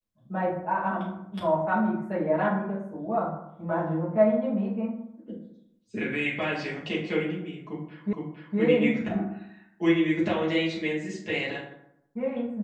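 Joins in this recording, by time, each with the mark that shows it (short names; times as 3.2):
8.13 repeat of the last 0.46 s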